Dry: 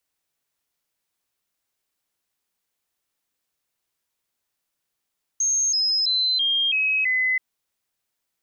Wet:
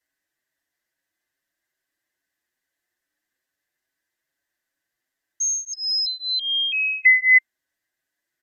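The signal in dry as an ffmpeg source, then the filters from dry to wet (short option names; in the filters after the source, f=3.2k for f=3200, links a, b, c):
-f lavfi -i "aevalsrc='0.119*clip(min(mod(t,0.33),0.33-mod(t,0.33))/0.005,0,1)*sin(2*PI*6430*pow(2,-floor(t/0.33)/3)*mod(t,0.33))':d=1.98:s=44100"
-filter_complex "[0:a]superequalizer=6b=2.24:8b=1.58:11b=3.98:16b=0.708,aresample=32000,aresample=44100,asplit=2[a][b];[b]adelay=6.5,afreqshift=2.4[c];[a][c]amix=inputs=2:normalize=1"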